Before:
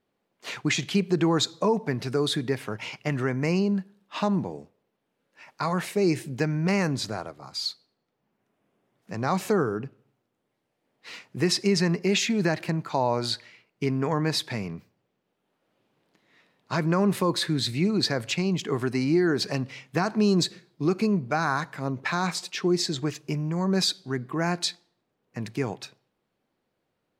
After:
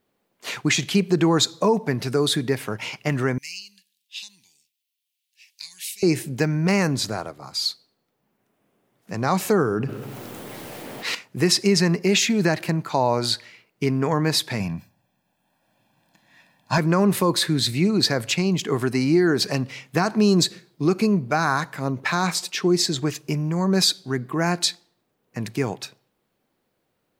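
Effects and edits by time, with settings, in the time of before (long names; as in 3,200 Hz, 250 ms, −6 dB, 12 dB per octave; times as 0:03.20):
0:03.38–0:06.03: inverse Chebyshev high-pass filter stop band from 1,400 Hz
0:09.65–0:11.15: envelope flattener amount 70%
0:14.60–0:16.78: comb filter 1.2 ms, depth 84%
whole clip: high-shelf EQ 9,800 Hz +11 dB; level +4 dB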